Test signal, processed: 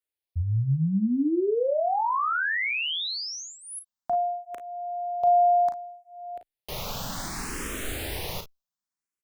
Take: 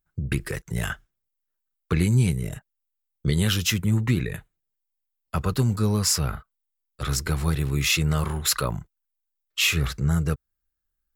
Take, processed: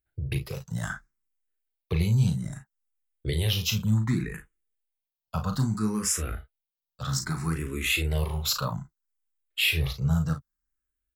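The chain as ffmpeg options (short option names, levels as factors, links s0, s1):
-filter_complex "[0:a]asplit=2[s0][s1];[s1]aecho=0:1:37|52:0.422|0.188[s2];[s0][s2]amix=inputs=2:normalize=0,asplit=2[s3][s4];[s4]afreqshift=0.63[s5];[s3][s5]amix=inputs=2:normalize=1,volume=0.794"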